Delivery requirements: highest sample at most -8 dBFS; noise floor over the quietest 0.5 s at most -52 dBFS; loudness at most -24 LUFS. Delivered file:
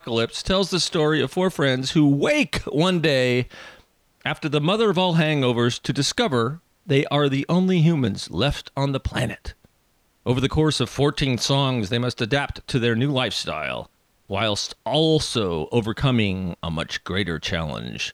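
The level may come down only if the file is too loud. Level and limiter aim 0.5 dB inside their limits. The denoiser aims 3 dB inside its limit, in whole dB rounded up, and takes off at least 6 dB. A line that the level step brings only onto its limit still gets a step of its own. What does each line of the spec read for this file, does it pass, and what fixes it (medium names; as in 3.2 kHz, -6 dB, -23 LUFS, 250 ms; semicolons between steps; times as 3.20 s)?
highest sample -5.0 dBFS: fail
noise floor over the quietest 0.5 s -64 dBFS: pass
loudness -22.0 LUFS: fail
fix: trim -2.5 dB; peak limiter -8.5 dBFS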